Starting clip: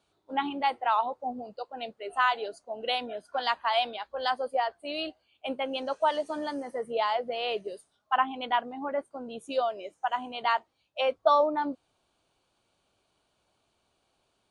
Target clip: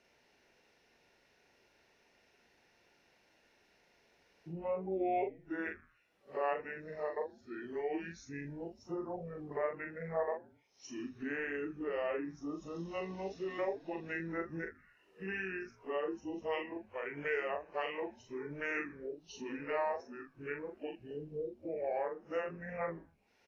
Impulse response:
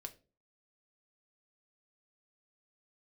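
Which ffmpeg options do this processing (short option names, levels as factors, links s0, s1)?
-filter_complex "[0:a]areverse,acompressor=threshold=0.00562:ratio=2.5,lowshelf=f=460:g=-10,asetrate=27254,aresample=44100,asplit=2[s0][s1];[s1]adelay=42,volume=0.562[s2];[s0][s2]amix=inputs=2:normalize=0,asplit=4[s3][s4][s5][s6];[s4]adelay=80,afreqshift=-120,volume=0.1[s7];[s5]adelay=160,afreqshift=-240,volume=0.0462[s8];[s6]adelay=240,afreqshift=-360,volume=0.0211[s9];[s3][s7][s8][s9]amix=inputs=4:normalize=0,volume=1.78"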